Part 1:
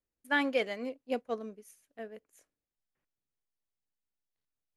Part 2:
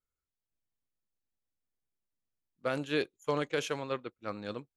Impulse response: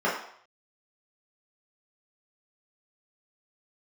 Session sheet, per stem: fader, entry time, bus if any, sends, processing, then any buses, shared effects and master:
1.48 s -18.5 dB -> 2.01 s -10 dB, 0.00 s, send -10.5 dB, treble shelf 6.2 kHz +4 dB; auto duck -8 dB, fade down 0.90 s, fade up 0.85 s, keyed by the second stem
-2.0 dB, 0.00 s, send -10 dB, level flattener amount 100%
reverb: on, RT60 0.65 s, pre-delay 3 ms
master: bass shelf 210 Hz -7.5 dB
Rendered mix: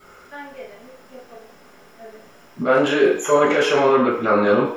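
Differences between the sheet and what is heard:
stem 1 -18.5 dB -> -11.0 dB; stem 2: send -10 dB -> -0.5 dB

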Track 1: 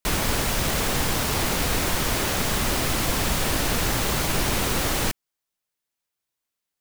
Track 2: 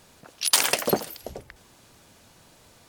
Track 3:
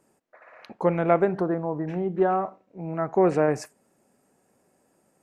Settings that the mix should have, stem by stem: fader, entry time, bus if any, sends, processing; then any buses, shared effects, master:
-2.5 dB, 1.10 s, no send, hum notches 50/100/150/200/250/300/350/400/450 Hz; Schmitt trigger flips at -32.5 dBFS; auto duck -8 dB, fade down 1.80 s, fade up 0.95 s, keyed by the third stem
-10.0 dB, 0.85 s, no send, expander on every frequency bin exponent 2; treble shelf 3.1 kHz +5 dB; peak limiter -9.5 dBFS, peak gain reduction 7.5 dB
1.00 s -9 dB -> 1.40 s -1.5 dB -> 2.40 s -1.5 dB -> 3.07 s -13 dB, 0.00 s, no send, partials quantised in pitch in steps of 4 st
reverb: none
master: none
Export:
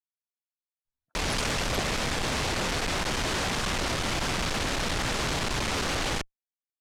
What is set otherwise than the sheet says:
stem 3: muted; master: extra low-pass 7 kHz 12 dB/octave

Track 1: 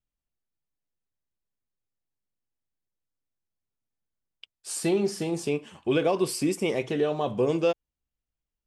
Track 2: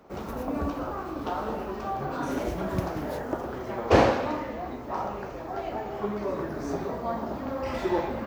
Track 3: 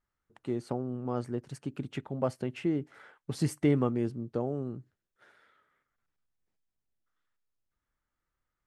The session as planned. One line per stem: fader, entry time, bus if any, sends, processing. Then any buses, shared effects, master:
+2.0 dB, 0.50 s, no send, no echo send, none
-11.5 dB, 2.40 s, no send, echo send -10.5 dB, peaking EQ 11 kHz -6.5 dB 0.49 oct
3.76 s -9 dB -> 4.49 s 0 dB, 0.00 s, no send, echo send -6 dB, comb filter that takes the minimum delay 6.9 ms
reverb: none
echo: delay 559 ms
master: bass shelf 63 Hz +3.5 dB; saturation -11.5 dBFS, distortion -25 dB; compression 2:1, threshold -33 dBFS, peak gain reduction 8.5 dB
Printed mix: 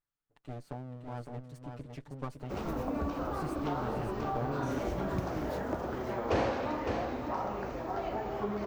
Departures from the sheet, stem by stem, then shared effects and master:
stem 1: muted; stem 2 -11.5 dB -> -0.5 dB

